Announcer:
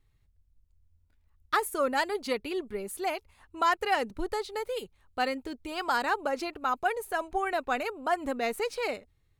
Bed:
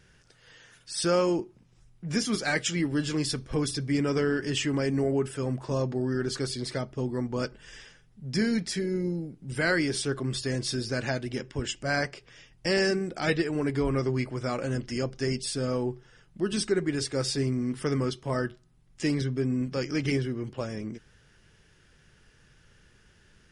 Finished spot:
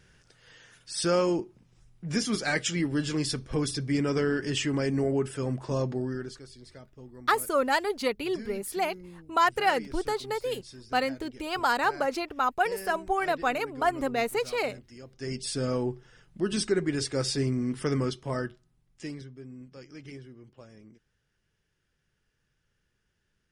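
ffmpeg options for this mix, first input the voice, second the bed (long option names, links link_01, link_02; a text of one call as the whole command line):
ffmpeg -i stem1.wav -i stem2.wav -filter_complex "[0:a]adelay=5750,volume=2.5dB[link_01];[1:a]volume=16.5dB,afade=type=out:start_time=5.91:duration=0.49:silence=0.149624,afade=type=in:start_time=15.09:duration=0.46:silence=0.141254,afade=type=out:start_time=17.98:duration=1.32:silence=0.141254[link_02];[link_01][link_02]amix=inputs=2:normalize=0" out.wav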